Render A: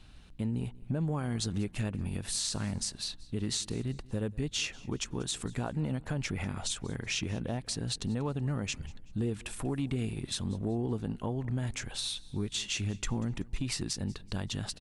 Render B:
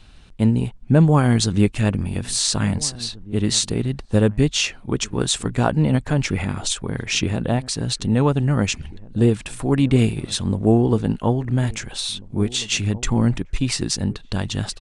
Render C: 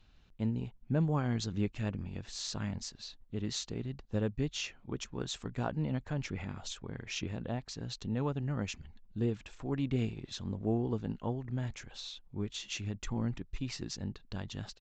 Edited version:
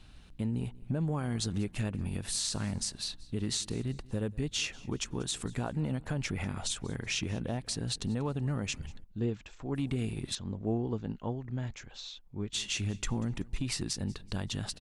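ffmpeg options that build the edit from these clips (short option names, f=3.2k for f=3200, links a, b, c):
-filter_complex "[2:a]asplit=2[a][b];[0:a]asplit=3[c][d][e];[c]atrim=end=9.042[f];[a]atrim=start=9.038:end=9.752[g];[d]atrim=start=9.748:end=10.352[h];[b]atrim=start=10.348:end=12.532[i];[e]atrim=start=12.528[j];[f][g]acrossfade=d=0.004:c1=hsin:c2=hsin[k];[k][h]acrossfade=d=0.004:c1=hsin:c2=hsin[l];[l][i]acrossfade=d=0.004:c1=hsin:c2=hsin[m];[m][j]acrossfade=d=0.004:c1=hsin:c2=hsin"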